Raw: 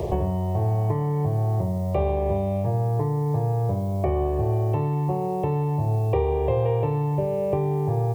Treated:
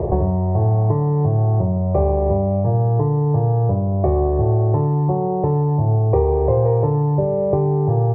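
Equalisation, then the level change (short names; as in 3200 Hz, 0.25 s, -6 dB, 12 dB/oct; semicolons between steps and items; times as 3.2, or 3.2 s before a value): Bessel low-pass 1000 Hz, order 8; +6.5 dB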